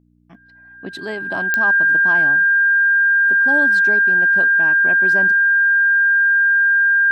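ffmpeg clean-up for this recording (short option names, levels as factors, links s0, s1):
-af "adeclick=t=4,bandreject=f=59.9:t=h:w=4,bandreject=f=119.8:t=h:w=4,bandreject=f=179.7:t=h:w=4,bandreject=f=239.6:t=h:w=4,bandreject=f=299.5:t=h:w=4,bandreject=f=1600:w=30"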